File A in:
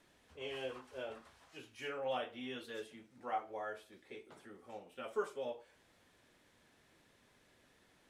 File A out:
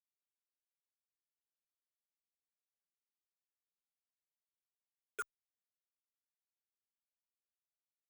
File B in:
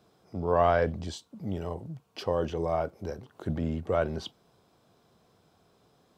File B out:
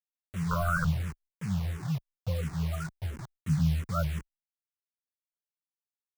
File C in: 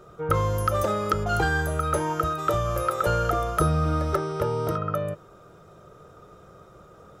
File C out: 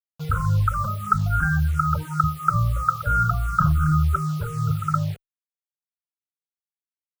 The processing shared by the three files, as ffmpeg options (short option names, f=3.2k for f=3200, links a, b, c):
-filter_complex "[0:a]acrossover=split=690[a][b];[a]aeval=exprs='(mod(7.94*val(0)+1,2)-1)/7.94':c=same[c];[c][b]amix=inputs=2:normalize=0,firequalizer=gain_entry='entry(100,0);entry(150,4);entry(230,-14);entry(360,-18);entry(760,-17);entry(1400,0);entry(1900,-18);entry(3200,-24);entry(7700,-27);entry(13000,-24)':delay=0.05:min_phase=1,afftfilt=real='re*gte(hypot(re,im),0.0398)':imag='im*gte(hypot(re,im),0.0398)':win_size=1024:overlap=0.75,acrusher=bits=7:mix=0:aa=0.000001,asplit=2[d][e];[e]afreqshift=-2.9[f];[d][f]amix=inputs=2:normalize=1,volume=9dB"